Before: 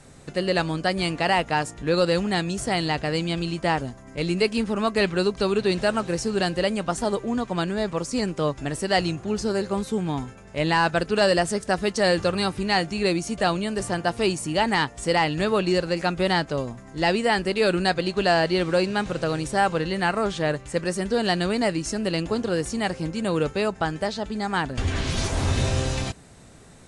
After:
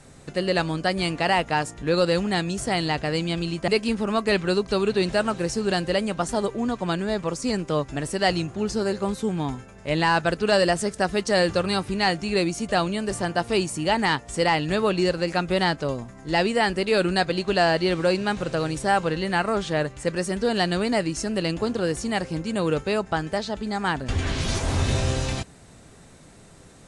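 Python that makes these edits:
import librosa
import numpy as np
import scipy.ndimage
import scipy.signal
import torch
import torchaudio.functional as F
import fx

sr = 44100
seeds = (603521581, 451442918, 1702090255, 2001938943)

y = fx.edit(x, sr, fx.cut(start_s=3.68, length_s=0.69), tone=tone)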